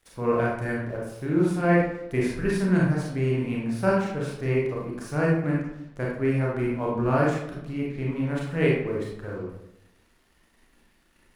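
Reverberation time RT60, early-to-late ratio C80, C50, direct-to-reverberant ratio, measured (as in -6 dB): 0.80 s, 4.5 dB, 0.5 dB, -4.5 dB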